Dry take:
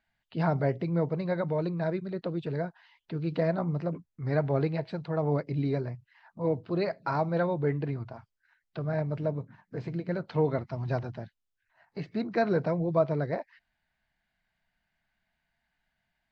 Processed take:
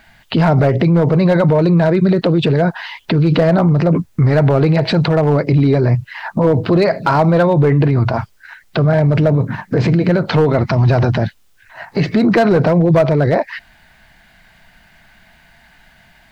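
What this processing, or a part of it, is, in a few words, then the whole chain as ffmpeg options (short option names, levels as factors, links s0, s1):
loud club master: -af "acompressor=threshold=0.0282:ratio=2,asoftclip=type=hard:threshold=0.0531,alimiter=level_in=63.1:limit=0.891:release=50:level=0:latency=1,volume=0.562"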